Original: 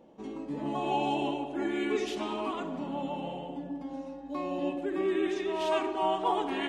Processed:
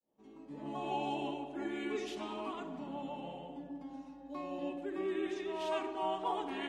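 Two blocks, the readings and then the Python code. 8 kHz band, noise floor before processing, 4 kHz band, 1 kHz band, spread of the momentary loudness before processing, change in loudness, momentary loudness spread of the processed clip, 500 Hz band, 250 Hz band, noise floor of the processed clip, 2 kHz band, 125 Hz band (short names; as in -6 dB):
-7.0 dB, -43 dBFS, -7.0 dB, -7.0 dB, 9 LU, -7.0 dB, 10 LU, -7.5 dB, -7.5 dB, -55 dBFS, -7.0 dB, -8.0 dB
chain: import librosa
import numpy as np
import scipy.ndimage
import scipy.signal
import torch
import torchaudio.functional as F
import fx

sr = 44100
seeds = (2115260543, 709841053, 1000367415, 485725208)

y = fx.fade_in_head(x, sr, length_s=0.82)
y = fx.hum_notches(y, sr, base_hz=60, count=9)
y = y * librosa.db_to_amplitude(-7.0)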